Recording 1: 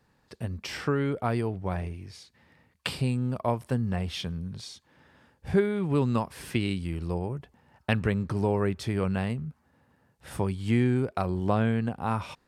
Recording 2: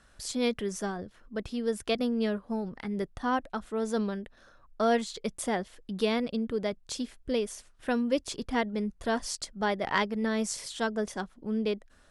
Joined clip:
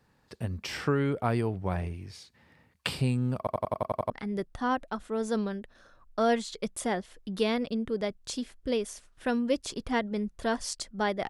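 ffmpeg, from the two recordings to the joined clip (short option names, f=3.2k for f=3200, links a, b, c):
-filter_complex "[0:a]apad=whole_dur=11.29,atrim=end=11.29,asplit=8[a][b][c][d][e][f][g][h];[a]atrim=end=3.472[i];[b]atrim=start=3.378:end=3.472[j];[c]atrim=start=3.378:end=3.472[k];[d]atrim=start=3.378:end=3.472[l];[e]atrim=start=3.378:end=3.472[m];[f]atrim=start=3.378:end=3.472[n];[g]atrim=start=3.378:end=3.472[o];[h]atrim=start=3.378:end=3.472[p];[1:a]atrim=start=2.718:end=9.91[q];[i][j]acrossfade=d=0.004:c1=hsin:c2=hsin[r];[r][k]acrossfade=d=0.004:c1=hsin:c2=hsin[s];[s][l]acrossfade=d=0.004:c1=hsin:c2=hsin[t];[t][m]acrossfade=d=0.004:c1=hsin:c2=hsin[u];[u][n]acrossfade=d=0.004:c1=hsin:c2=hsin[v];[v][o]acrossfade=d=0.004:c1=hsin:c2=hsin[w];[w][p]acrossfade=d=0.004:c1=hsin:c2=hsin[x];[x][q]acrossfade=d=0.004:c1=hsin:c2=hsin"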